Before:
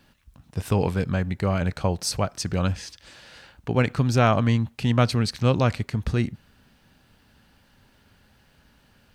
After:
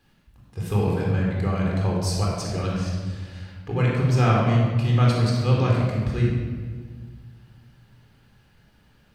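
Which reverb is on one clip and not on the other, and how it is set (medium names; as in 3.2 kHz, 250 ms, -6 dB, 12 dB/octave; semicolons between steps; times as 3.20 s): simulated room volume 1900 m³, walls mixed, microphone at 3.9 m; trim -8 dB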